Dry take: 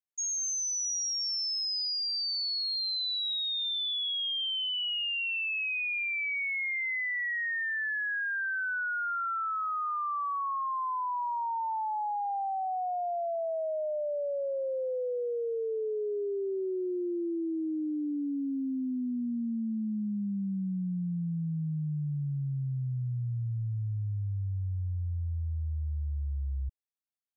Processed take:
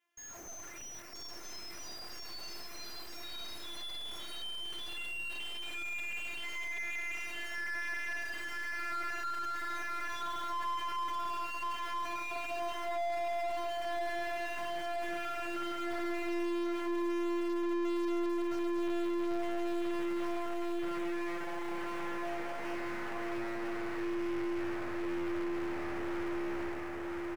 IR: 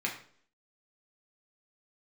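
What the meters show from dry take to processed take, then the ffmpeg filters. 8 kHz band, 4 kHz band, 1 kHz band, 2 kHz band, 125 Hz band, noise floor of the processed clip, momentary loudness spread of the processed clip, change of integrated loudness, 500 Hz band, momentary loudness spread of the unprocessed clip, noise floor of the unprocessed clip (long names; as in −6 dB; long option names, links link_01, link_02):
can't be measured, −11.5 dB, −4.0 dB, −6.0 dB, below −20 dB, −45 dBFS, 10 LU, −6.0 dB, −2.5 dB, 5 LU, −32 dBFS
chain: -filter_complex "[0:a]aeval=exprs='(tanh(141*val(0)+0.35)-tanh(0.35))/141':channel_layout=same[link_01];[1:a]atrim=start_sample=2205,asetrate=61740,aresample=44100[link_02];[link_01][link_02]afir=irnorm=-1:irlink=0,afftfilt=real='hypot(re,im)*cos(PI*b)':imag='0':win_size=512:overlap=0.75,acrusher=bits=4:mode=log:mix=0:aa=0.000001,equalizer=frequency=125:width_type=o:width=1:gain=-9,equalizer=frequency=2000:width_type=o:width=1:gain=5,equalizer=frequency=4000:width_type=o:width=1:gain=-8,aecho=1:1:972|1944|2916|3888|4860|5832:0.501|0.261|0.136|0.0705|0.0366|0.0191,asplit=2[link_03][link_04];[link_04]highpass=frequency=720:poles=1,volume=35dB,asoftclip=type=tanh:threshold=-27dB[link_05];[link_03][link_05]amix=inputs=2:normalize=0,lowpass=frequency=1100:poles=1,volume=-6dB"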